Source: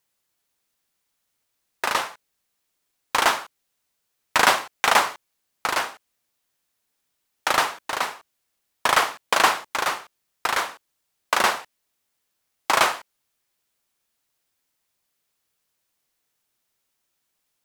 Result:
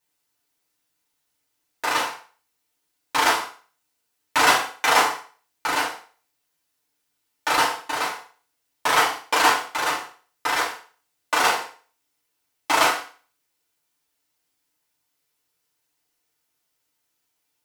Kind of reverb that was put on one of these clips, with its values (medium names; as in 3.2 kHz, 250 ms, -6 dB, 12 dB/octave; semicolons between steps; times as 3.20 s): FDN reverb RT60 0.41 s, low-frequency decay 0.85×, high-frequency decay 0.95×, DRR -6.5 dB; trim -6.5 dB